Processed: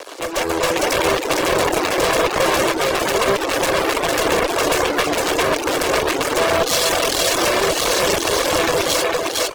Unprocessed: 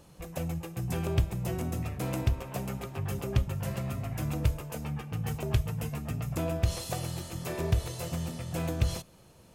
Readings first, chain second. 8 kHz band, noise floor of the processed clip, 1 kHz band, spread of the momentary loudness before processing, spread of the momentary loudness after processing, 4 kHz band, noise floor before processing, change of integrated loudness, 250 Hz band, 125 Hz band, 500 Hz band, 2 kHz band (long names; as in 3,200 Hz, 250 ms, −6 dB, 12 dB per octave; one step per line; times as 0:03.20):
+21.5 dB, −24 dBFS, +23.0 dB, 6 LU, 2 LU, +24.0 dB, −56 dBFS, +15.5 dB, +11.5 dB, −4.0 dB, +21.0 dB, +25.0 dB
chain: lower of the sound and its delayed copy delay 1.8 ms
low-pass filter 6,800 Hz 12 dB per octave
in parallel at −8.5 dB: fuzz pedal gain 52 dB, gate −58 dBFS
on the sum: Butterworth high-pass 310 Hz 48 dB per octave
on a send: single-tap delay 456 ms −5.5 dB
on the sum: asymmetric clip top −28.5 dBFS, bottom −12 dBFS
automatic gain control gain up to 11.5 dB
single-tap delay 1,031 ms −15.5 dB
tube saturation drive 1 dB, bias 0.55
reverb reduction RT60 0.62 s
boost into a limiter +9 dB
level −4 dB